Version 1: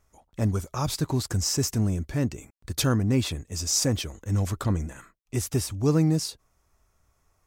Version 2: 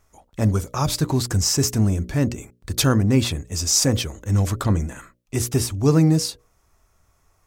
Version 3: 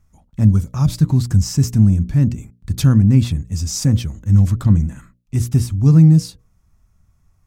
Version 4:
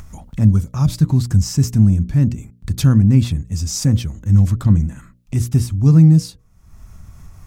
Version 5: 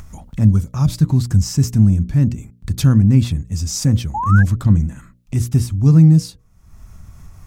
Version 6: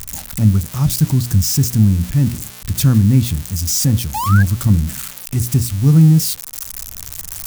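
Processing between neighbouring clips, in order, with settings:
notches 60/120/180/240/300/360/420/480/540/600 Hz; gain +6 dB
resonant low shelf 280 Hz +12.5 dB, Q 1.5; gain -6.5 dB
upward compressor, threshold -21 dBFS
painted sound rise, 4.14–4.43, 800–1700 Hz -21 dBFS
switching spikes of -14 dBFS

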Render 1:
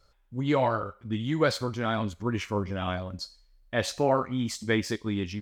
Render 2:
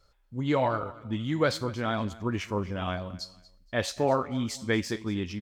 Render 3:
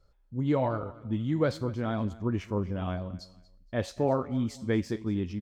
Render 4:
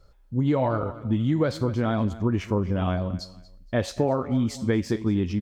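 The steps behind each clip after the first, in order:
feedback echo 0.235 s, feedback 27%, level -19.5 dB; gain -1 dB
tilt shelf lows +6 dB, about 830 Hz; gain -4 dB
compressor, threshold -28 dBFS, peak gain reduction 8 dB; gain +9 dB

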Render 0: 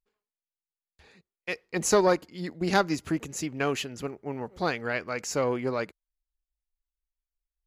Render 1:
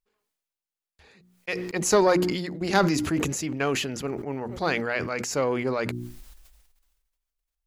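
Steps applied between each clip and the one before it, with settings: notches 60/120/180/240/300/360 Hz; sustainer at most 39 dB/s; gain +1.5 dB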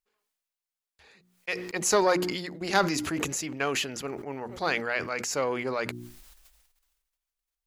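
low shelf 390 Hz -9 dB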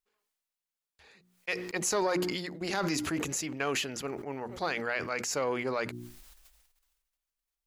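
limiter -18.5 dBFS, peak gain reduction 10 dB; gain -1.5 dB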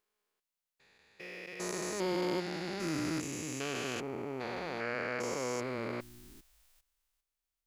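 stepped spectrum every 0.4 s

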